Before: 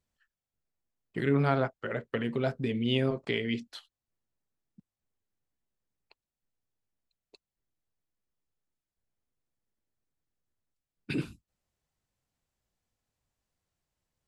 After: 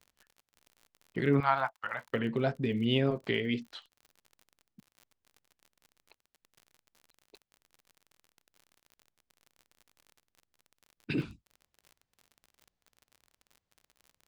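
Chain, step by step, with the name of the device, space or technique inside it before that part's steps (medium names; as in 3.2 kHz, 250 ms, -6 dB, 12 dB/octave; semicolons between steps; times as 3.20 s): lo-fi chain (low-pass 5.2 kHz 12 dB/octave; wow and flutter; crackle 47 per s -44 dBFS); 1.40–2.09 s: resonant low shelf 610 Hz -13.5 dB, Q 3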